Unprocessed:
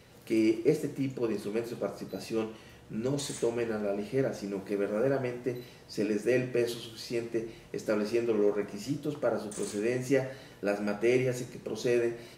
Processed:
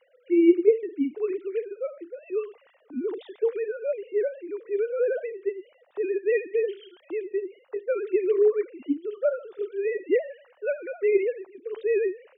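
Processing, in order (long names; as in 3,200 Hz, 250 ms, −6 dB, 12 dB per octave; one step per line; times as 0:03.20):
three sine waves on the formant tracks
one half of a high-frequency compander decoder only
level +4.5 dB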